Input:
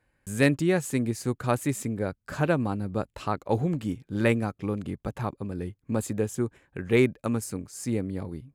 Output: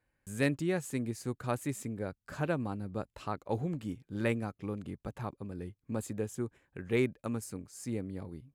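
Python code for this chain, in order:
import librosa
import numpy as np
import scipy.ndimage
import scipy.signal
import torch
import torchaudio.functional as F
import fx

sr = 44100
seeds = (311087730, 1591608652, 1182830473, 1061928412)

y = x * librosa.db_to_amplitude(-8.0)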